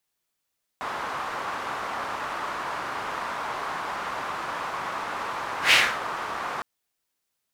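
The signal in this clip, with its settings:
pass-by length 5.81 s, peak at 0:04.91, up 0.12 s, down 0.29 s, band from 1,100 Hz, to 2,500 Hz, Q 2, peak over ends 15 dB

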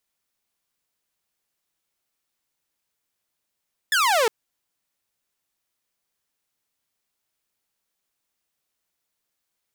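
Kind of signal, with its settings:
single falling chirp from 1,800 Hz, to 420 Hz, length 0.36 s saw, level −14.5 dB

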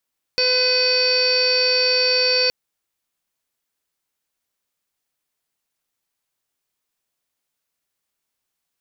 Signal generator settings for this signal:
steady harmonic partials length 2.12 s, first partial 504 Hz, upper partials −16/−9.5/−12/−3/−19/−18/−15.5/4/−9/−7.5 dB, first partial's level −21.5 dB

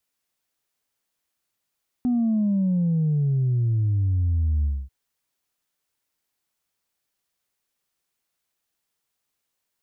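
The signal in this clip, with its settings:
bass drop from 250 Hz, over 2.84 s, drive 0 dB, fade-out 0.25 s, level −19 dB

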